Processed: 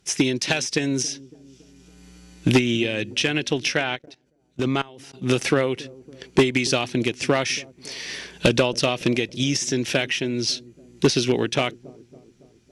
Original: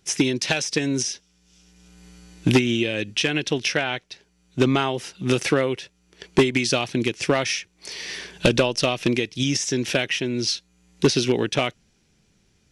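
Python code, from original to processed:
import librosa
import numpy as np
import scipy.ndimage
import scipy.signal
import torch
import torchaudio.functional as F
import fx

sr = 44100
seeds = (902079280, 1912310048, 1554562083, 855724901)

y = fx.echo_wet_lowpass(x, sr, ms=279, feedback_pct=56, hz=490.0, wet_db=-19)
y = fx.level_steps(y, sr, step_db=22, at=(3.95, 5.21), fade=0.02)
y = fx.cheby_harmonics(y, sr, harmonics=(2, 6, 8), levels_db=(-28, -41, -44), full_scale_db=-8.5)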